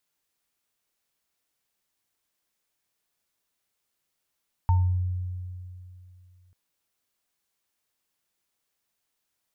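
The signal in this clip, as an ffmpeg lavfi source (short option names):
-f lavfi -i "aevalsrc='0.15*pow(10,-3*t/2.7)*sin(2*PI*90.7*t)+0.0562*pow(10,-3*t/0.37)*sin(2*PI*904*t)':d=1.84:s=44100"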